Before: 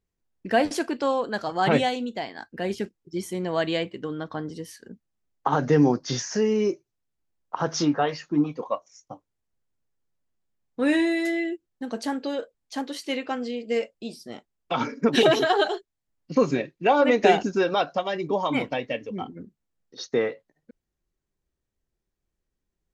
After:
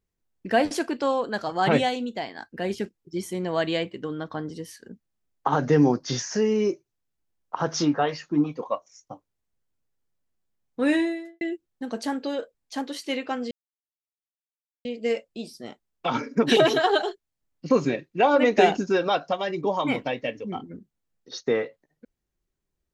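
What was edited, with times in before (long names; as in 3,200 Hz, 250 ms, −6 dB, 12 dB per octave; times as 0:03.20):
0:10.89–0:11.41: fade out and dull
0:13.51: splice in silence 1.34 s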